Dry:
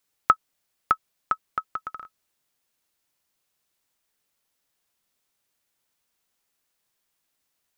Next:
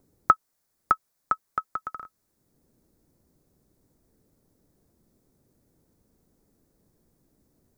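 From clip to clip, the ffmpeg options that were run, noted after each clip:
-filter_complex "[0:a]equalizer=f=2.9k:w=1.7:g=-11.5,acrossover=split=420[a][b];[a]acompressor=mode=upward:threshold=-49dB:ratio=2.5[c];[c][b]amix=inputs=2:normalize=0,volume=1.5dB"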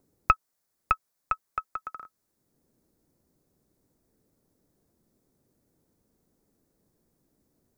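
-af "lowshelf=f=120:g=-5.5,aeval=exprs='(tanh(2*val(0)+0.8)-tanh(0.8))/2':c=same,volume=2dB"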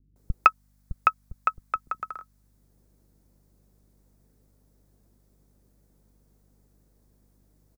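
-filter_complex "[0:a]aeval=exprs='val(0)+0.000447*(sin(2*PI*50*n/s)+sin(2*PI*2*50*n/s)/2+sin(2*PI*3*50*n/s)/3+sin(2*PI*4*50*n/s)/4+sin(2*PI*5*50*n/s)/5)':c=same,acrossover=split=270[a][b];[b]adelay=160[c];[a][c]amix=inputs=2:normalize=0,volume=4dB"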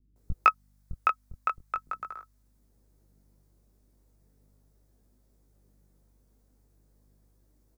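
-af "flanger=delay=16.5:depth=6.8:speed=0.39"

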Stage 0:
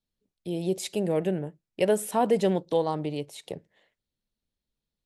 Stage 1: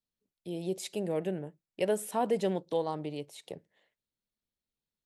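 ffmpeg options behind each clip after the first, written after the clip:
-af "lowshelf=f=95:g=-7.5,volume=-5.5dB"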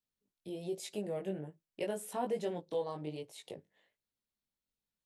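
-filter_complex "[0:a]asplit=2[a][b];[b]acompressor=threshold=-39dB:ratio=6,volume=1dB[c];[a][c]amix=inputs=2:normalize=0,flanger=delay=18:depth=2.9:speed=1.2,volume=-5.5dB"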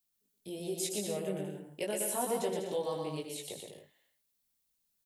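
-filter_complex "[0:a]crystalizer=i=2.5:c=0,asplit=2[a][b];[b]aecho=0:1:120|198|248.7|281.7|303.1:0.631|0.398|0.251|0.158|0.1[c];[a][c]amix=inputs=2:normalize=0"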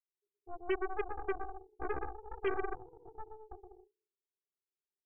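-af "asuperpass=centerf=390:order=8:qfactor=4.6,aeval=exprs='0.0355*(cos(1*acos(clip(val(0)/0.0355,-1,1)))-cos(1*PI/2))+0.00398*(cos(3*acos(clip(val(0)/0.0355,-1,1)))-cos(3*PI/2))+0.00631*(cos(7*acos(clip(val(0)/0.0355,-1,1)))-cos(7*PI/2))+0.00631*(cos(8*acos(clip(val(0)/0.0355,-1,1)))-cos(8*PI/2))':c=same,volume=4.5dB"

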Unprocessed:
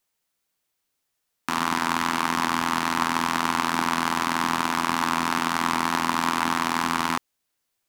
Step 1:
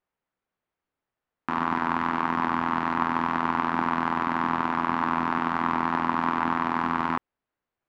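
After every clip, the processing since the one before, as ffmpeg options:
-af "lowpass=1.6k"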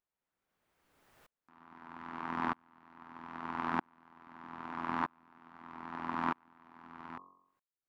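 -af "acompressor=mode=upward:threshold=-32dB:ratio=2.5,bandreject=f=45.21:t=h:w=4,bandreject=f=90.42:t=h:w=4,bandreject=f=135.63:t=h:w=4,bandreject=f=180.84:t=h:w=4,bandreject=f=226.05:t=h:w=4,bandreject=f=271.26:t=h:w=4,bandreject=f=316.47:t=h:w=4,bandreject=f=361.68:t=h:w=4,bandreject=f=406.89:t=h:w=4,bandreject=f=452.1:t=h:w=4,bandreject=f=497.31:t=h:w=4,bandreject=f=542.52:t=h:w=4,bandreject=f=587.73:t=h:w=4,bandreject=f=632.94:t=h:w=4,bandreject=f=678.15:t=h:w=4,bandreject=f=723.36:t=h:w=4,bandreject=f=768.57:t=h:w=4,bandreject=f=813.78:t=h:w=4,bandreject=f=858.99:t=h:w=4,bandreject=f=904.2:t=h:w=4,bandreject=f=949.41:t=h:w=4,bandreject=f=994.62:t=h:w=4,bandreject=f=1.03983k:t=h:w=4,bandreject=f=1.08504k:t=h:w=4,bandreject=f=1.13025k:t=h:w=4,bandreject=f=1.17546k:t=h:w=4,bandreject=f=1.22067k:t=h:w=4,bandreject=f=1.26588k:t=h:w=4,aeval=exprs='val(0)*pow(10,-38*if(lt(mod(-0.79*n/s,1),2*abs(-0.79)/1000),1-mod(-0.79*n/s,1)/(2*abs(-0.79)/1000),(mod(-0.79*n/s,1)-2*abs(-0.79)/1000)/(1-2*abs(-0.79)/1000))/20)':c=same,volume=-5dB"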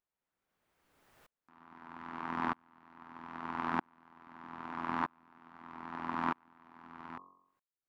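-af anull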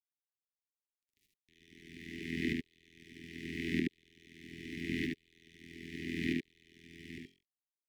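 -af "aeval=exprs='sgn(val(0))*max(abs(val(0))-0.00126,0)':c=same,asuperstop=centerf=880:order=20:qfactor=0.6,aecho=1:1:74:0.668,volume=7dB"

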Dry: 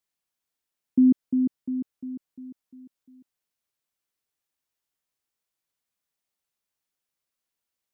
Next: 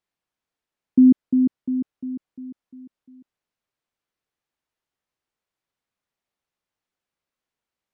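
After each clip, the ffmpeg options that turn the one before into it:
-af "aemphasis=mode=reproduction:type=75kf,volume=5dB"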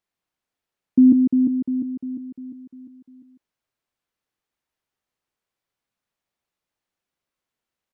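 -af "aecho=1:1:150:0.531"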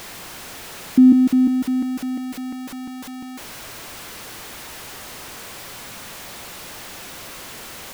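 -af "aeval=exprs='val(0)+0.5*0.0282*sgn(val(0))':c=same,volume=1.5dB"

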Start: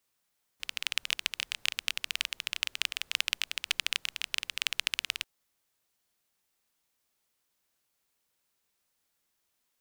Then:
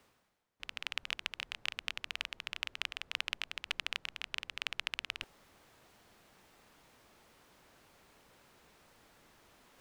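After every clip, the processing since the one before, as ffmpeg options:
-af "lowpass=f=1.1k:p=1,areverse,acompressor=mode=upward:threshold=-46dB:ratio=2.5,areverse,volume=2dB"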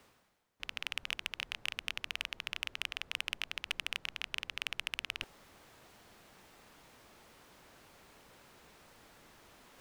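-af "asoftclip=type=tanh:threshold=-21.5dB,volume=4dB"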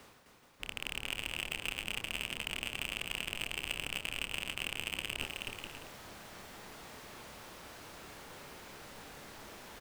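-filter_complex "[0:a]aeval=exprs='(tanh(35.5*val(0)+0.25)-tanh(0.25))/35.5':c=same,asplit=2[a][b];[b]adelay=28,volume=-9dB[c];[a][c]amix=inputs=2:normalize=0,asplit=2[d][e];[e]aecho=0:1:260|429|538.8|610.3|656.7:0.631|0.398|0.251|0.158|0.1[f];[d][f]amix=inputs=2:normalize=0,volume=7.5dB"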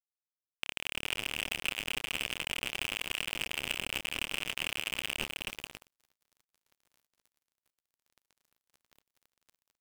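-af "aeval=exprs='val(0)+0.000562*sin(2*PI*15000*n/s)':c=same,acrusher=bits=5:mix=0:aa=0.5,volume=3dB"

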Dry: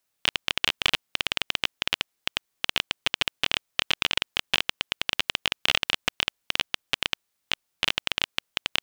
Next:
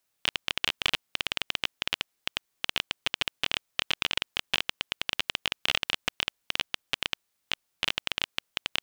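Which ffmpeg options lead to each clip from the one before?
-af "alimiter=limit=-7.5dB:level=0:latency=1:release=12"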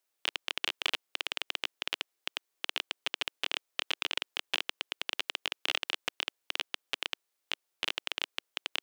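-af "lowshelf=f=260:t=q:w=1.5:g=-9.5,volume=-4.5dB"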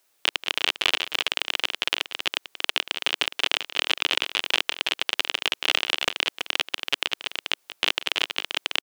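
-filter_complex "[0:a]asplit=2[a][b];[b]aecho=0:1:183|329:0.106|0.282[c];[a][c]amix=inputs=2:normalize=0,alimiter=level_in=16.5dB:limit=-1dB:release=50:level=0:latency=1,volume=-2dB"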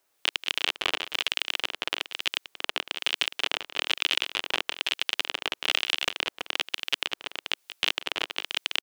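-filter_complex "[0:a]acrossover=split=1700[a][b];[a]aeval=exprs='val(0)*(1-0.5/2+0.5/2*cos(2*PI*1.1*n/s))':c=same[c];[b]aeval=exprs='val(0)*(1-0.5/2-0.5/2*cos(2*PI*1.1*n/s))':c=same[d];[c][d]amix=inputs=2:normalize=0,volume=-1dB"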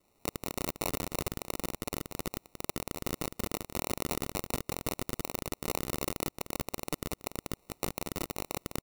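-af "acrusher=samples=27:mix=1:aa=0.000001,asoftclip=type=hard:threshold=-23.5dB,crystalizer=i=2:c=0"

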